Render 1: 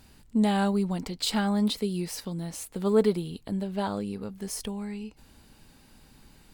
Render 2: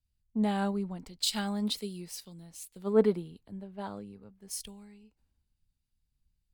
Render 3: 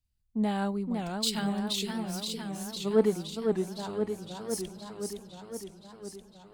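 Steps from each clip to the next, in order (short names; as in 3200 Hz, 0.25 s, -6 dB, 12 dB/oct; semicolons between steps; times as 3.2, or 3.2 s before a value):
three-band expander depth 100%; gain -8.5 dB
warbling echo 0.513 s, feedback 69%, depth 209 cents, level -4.5 dB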